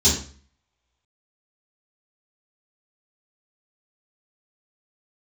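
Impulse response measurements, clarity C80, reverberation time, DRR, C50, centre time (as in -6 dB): 10.5 dB, 0.45 s, -10.5 dB, 5.5 dB, 34 ms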